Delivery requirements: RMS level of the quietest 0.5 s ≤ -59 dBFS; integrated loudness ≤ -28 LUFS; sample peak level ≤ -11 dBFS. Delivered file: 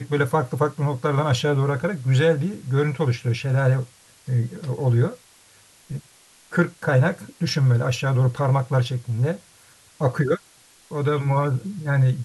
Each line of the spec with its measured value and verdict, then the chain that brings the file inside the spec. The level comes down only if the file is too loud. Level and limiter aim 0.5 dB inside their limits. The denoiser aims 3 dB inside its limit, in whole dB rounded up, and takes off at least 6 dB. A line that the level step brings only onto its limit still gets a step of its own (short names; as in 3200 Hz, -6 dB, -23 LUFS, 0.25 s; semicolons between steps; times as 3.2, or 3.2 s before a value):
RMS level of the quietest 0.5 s -54 dBFS: fail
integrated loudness -22.5 LUFS: fail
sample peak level -5.5 dBFS: fail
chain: gain -6 dB